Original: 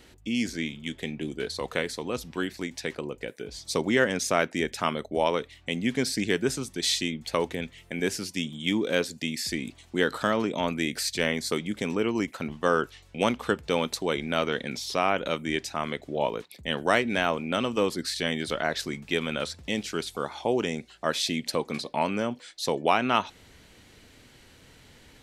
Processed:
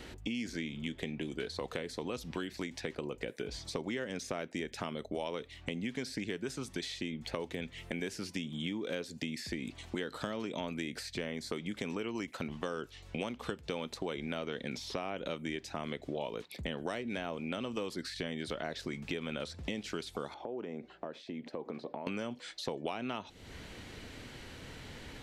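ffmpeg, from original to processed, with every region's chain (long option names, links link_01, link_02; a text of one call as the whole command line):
ffmpeg -i in.wav -filter_complex "[0:a]asettb=1/sr,asplit=3[link_01][link_02][link_03];[link_01]atrim=end=20.344[link_04];[link_02]atrim=start=20.34:end=22.07,asetpts=PTS-STARTPTS,afade=type=in:duration=0.004:curve=qsin,afade=type=out:start_time=1.726:duration=0.004:curve=qsin,acompressor=threshold=-38dB:ratio=12:attack=3.2:release=140:knee=1:detection=peak,bandpass=frequency=430:width_type=q:width=0.66[link_05];[link_03]atrim=start=22.066[link_06];[link_04][link_05]acrossfade=duration=0.004:curve1=hsin:curve2=qsin[link_07];[link_07][link_06]acrossfade=duration=0.004:curve1=qsin:curve2=hsin,acompressor=threshold=-39dB:ratio=2,highshelf=frequency=6200:gain=-9.5,acrossover=split=710|2600[link_08][link_09][link_10];[link_08]acompressor=threshold=-43dB:ratio=4[link_11];[link_09]acompressor=threshold=-53dB:ratio=4[link_12];[link_10]acompressor=threshold=-52dB:ratio=4[link_13];[link_11][link_12][link_13]amix=inputs=3:normalize=0,volume=6.5dB" out.wav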